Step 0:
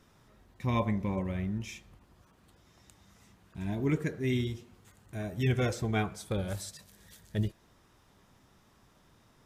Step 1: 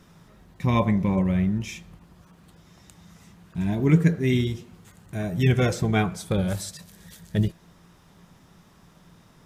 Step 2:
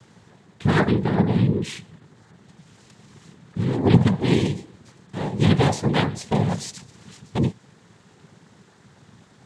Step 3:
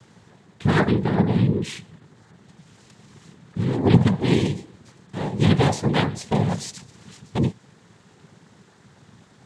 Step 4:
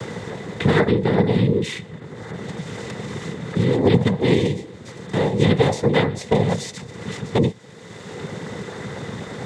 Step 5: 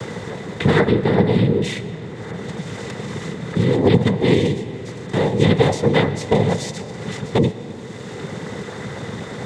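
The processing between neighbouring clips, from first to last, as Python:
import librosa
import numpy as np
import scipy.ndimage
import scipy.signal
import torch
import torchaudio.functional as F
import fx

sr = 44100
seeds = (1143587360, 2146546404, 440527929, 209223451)

y1 = fx.peak_eq(x, sr, hz=170.0, db=14.5, octaves=0.2)
y1 = F.gain(torch.from_numpy(y1), 7.0).numpy()
y2 = fx.noise_vocoder(y1, sr, seeds[0], bands=6)
y2 = F.gain(torch.from_numpy(y2), 3.0).numpy()
y3 = y2
y4 = fx.small_body(y3, sr, hz=(480.0, 2000.0, 3600.0), ring_ms=25, db=10)
y4 = fx.band_squash(y4, sr, depth_pct=70)
y4 = F.gain(torch.from_numpy(y4), 1.0).numpy()
y5 = fx.rev_freeverb(y4, sr, rt60_s=4.0, hf_ratio=0.6, predelay_ms=70, drr_db=13.0)
y5 = F.gain(torch.from_numpy(y5), 1.5).numpy()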